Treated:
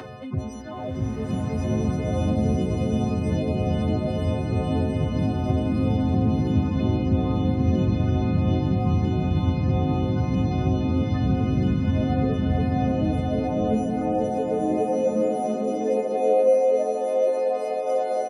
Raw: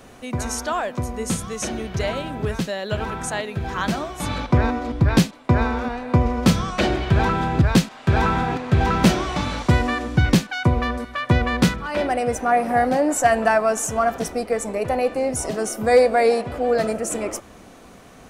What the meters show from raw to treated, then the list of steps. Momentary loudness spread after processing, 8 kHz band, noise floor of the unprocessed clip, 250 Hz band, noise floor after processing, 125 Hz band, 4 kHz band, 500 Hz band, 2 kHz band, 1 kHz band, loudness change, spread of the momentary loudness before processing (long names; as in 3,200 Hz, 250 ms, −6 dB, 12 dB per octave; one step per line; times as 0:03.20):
4 LU, below −15 dB, −45 dBFS, 0.0 dB, −30 dBFS, 0.0 dB, −11.5 dB, −2.0 dB, −16.0 dB, −7.5 dB, −2.0 dB, 9 LU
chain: every partial snapped to a pitch grid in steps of 3 semitones
Savitzky-Golay smoothing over 15 samples
reversed playback
downward compressor 12 to 1, threshold −31 dBFS, peak gain reduction 21.5 dB
reversed playback
high-pass filter 54 Hz
repeating echo 547 ms, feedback 51%, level −8 dB
flanger swept by the level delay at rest 3.5 ms, full sweep at −31 dBFS
tilt shelving filter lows +6 dB
high-pass filter sweep 100 Hz → 640 Hz, 0:12.80–0:15.46
high-shelf EQ 2,700 Hz −9.5 dB
upward compression, threshold −33 dBFS
slow-attack reverb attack 1,520 ms, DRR −5 dB
level +1.5 dB